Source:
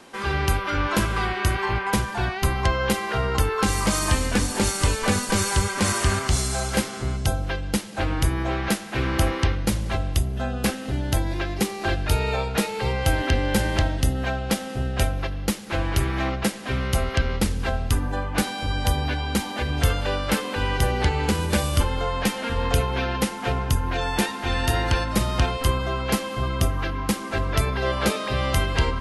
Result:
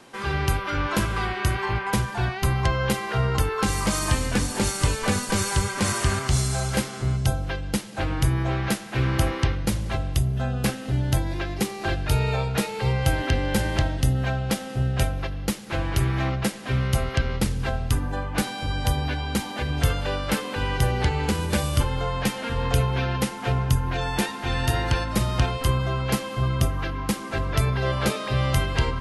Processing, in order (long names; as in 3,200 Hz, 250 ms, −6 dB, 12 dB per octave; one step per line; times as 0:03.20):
parametric band 130 Hz +10 dB 0.25 octaves
level −2 dB